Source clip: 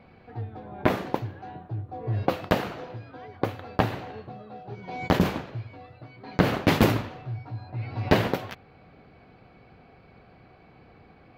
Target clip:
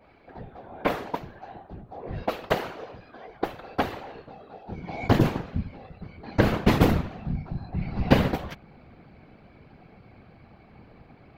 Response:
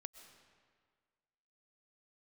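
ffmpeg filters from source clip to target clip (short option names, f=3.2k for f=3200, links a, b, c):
-af "asetnsamples=n=441:p=0,asendcmd='4.69 equalizer g 6',equalizer=f=140:w=1.1:g=-11,afftfilt=real='hypot(re,im)*cos(2*PI*random(0))':imag='hypot(re,im)*sin(2*PI*random(1))':win_size=512:overlap=0.75,adynamicequalizer=threshold=0.00631:dfrequency=1700:dqfactor=0.7:tfrequency=1700:tqfactor=0.7:attack=5:release=100:ratio=0.375:range=2.5:mode=cutabove:tftype=highshelf,volume=5.5dB"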